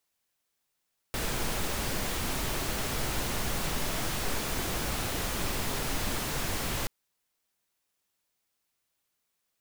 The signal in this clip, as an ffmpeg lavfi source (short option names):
-f lavfi -i "anoisesrc=c=pink:a=0.145:d=5.73:r=44100:seed=1"